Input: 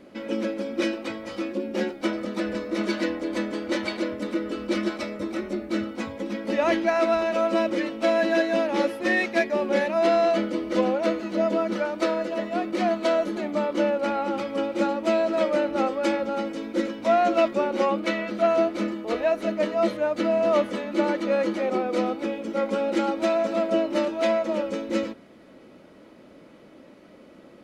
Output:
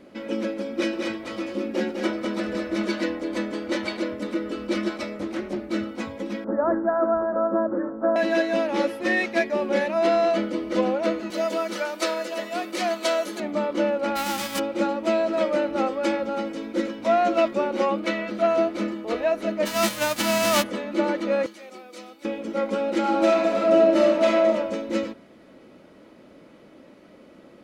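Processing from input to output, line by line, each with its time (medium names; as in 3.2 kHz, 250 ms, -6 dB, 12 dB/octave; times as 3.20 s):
0.75–2.88 s: delay 203 ms -4.5 dB
5.19–5.70 s: loudspeaker Doppler distortion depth 0.25 ms
6.44–8.16 s: steep low-pass 1.6 kHz 72 dB/octave
11.30–13.40 s: RIAA curve recording
14.15–14.58 s: formants flattened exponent 0.3
19.65–20.62 s: formants flattened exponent 0.3
21.46–22.25 s: pre-emphasis filter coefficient 0.9
22.99–24.47 s: reverb throw, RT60 1.1 s, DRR -2 dB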